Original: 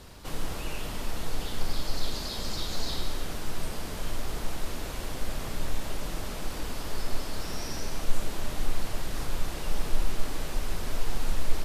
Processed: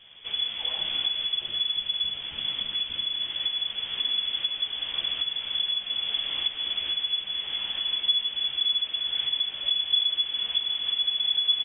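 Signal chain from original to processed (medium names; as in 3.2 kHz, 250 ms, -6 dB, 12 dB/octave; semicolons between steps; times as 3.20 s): recorder AGC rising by 17 dB/s; frequency inversion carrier 3.4 kHz; doubling 14 ms -6 dB; trim -7 dB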